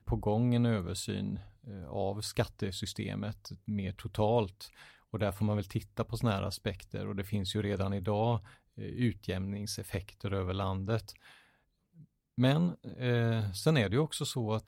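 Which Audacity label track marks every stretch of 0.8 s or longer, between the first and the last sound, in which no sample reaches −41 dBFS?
11.110000	12.380000	silence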